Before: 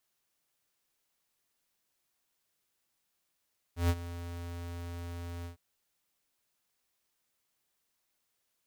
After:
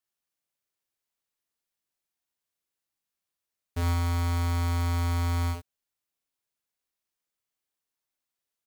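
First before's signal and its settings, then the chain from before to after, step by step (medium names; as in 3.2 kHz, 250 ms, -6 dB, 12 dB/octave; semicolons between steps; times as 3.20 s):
ADSR square 86.1 Hz, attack 134 ms, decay 50 ms, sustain -15.5 dB, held 1.69 s, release 116 ms -25 dBFS
waveshaping leveller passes 5; on a send: early reflections 41 ms -10.5 dB, 59 ms -5.5 dB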